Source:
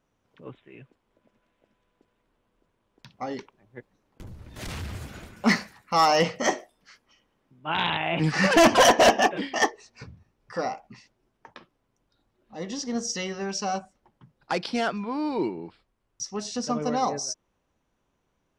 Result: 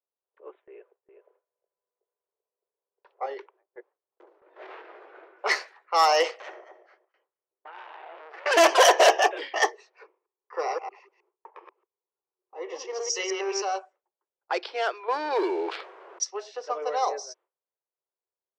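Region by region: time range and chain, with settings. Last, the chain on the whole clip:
0.64–3.26 s: resonant low shelf 300 Hz -12.5 dB, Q 3 + delay 388 ms -8.5 dB
4.40–5.39 s: distance through air 160 m + doubling 21 ms -7 dB
6.31–8.46 s: compression 4:1, threshold -33 dBFS + feedback delay 222 ms, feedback 20%, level -11 dB + transformer saturation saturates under 2.7 kHz
10.05–13.62 s: chunks repeated in reverse 105 ms, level -2.5 dB + rippled EQ curve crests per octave 0.77, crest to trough 9 dB
15.08–16.24 s: bass shelf 300 Hz -2.5 dB + waveshaping leveller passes 2 + level flattener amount 70%
whole clip: steep high-pass 360 Hz 72 dB/octave; gate with hold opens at -48 dBFS; level-controlled noise filter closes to 1.2 kHz, open at -19 dBFS

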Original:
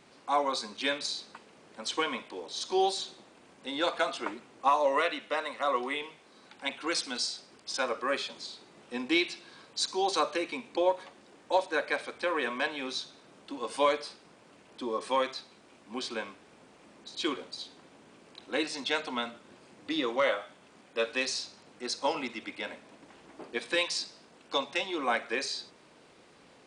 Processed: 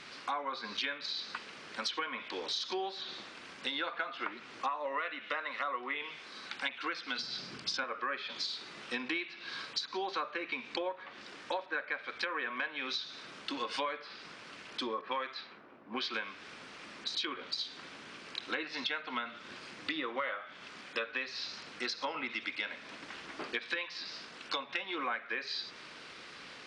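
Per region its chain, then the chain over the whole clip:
7.18–7.84 s: peaking EQ 140 Hz +14.5 dB 2 oct + band-stop 1.9 kHz, Q 25
15.01–16.14 s: high-pass 150 Hz 6 dB/octave + treble shelf 6.8 kHz +5.5 dB + level-controlled noise filter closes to 650 Hz, open at -27 dBFS
whole clip: low-pass that closes with the level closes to 2 kHz, closed at -28.5 dBFS; high-order bell 2.6 kHz +11 dB 2.6 oct; compression 6:1, threshold -36 dBFS; trim +2 dB

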